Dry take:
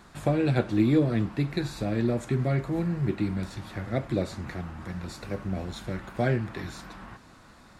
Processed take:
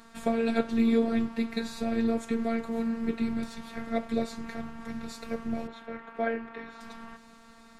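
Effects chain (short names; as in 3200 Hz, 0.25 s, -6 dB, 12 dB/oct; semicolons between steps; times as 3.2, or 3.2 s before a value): 5.67–6.81 three-band isolator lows -13 dB, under 280 Hz, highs -21 dB, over 2900 Hz; robotiser 229 Hz; gain +1.5 dB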